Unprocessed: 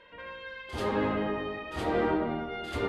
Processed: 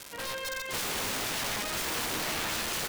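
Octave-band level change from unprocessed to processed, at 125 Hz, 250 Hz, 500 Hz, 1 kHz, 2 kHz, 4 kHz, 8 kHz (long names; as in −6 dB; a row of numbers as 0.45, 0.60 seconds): −5.5 dB, −10.0 dB, −8.0 dB, −2.5 dB, +4.0 dB, +11.5 dB, can't be measured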